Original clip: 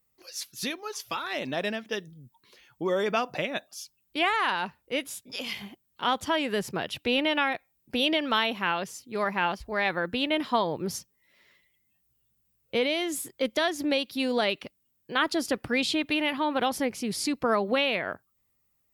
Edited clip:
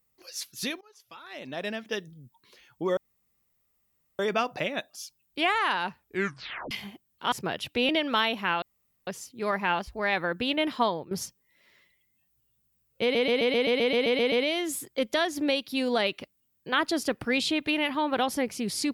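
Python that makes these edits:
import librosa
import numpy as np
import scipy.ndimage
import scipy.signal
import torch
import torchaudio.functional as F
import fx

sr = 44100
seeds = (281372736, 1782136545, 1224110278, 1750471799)

y = fx.edit(x, sr, fx.fade_in_from(start_s=0.81, length_s=1.04, curve='qua', floor_db=-21.5),
    fx.insert_room_tone(at_s=2.97, length_s=1.22),
    fx.tape_stop(start_s=4.78, length_s=0.71),
    fx.cut(start_s=6.1, length_s=0.52),
    fx.cut(start_s=7.19, length_s=0.88),
    fx.insert_room_tone(at_s=8.8, length_s=0.45),
    fx.fade_out_to(start_s=10.59, length_s=0.25, floor_db=-16.0),
    fx.stutter(start_s=12.75, slice_s=0.13, count=11), tone=tone)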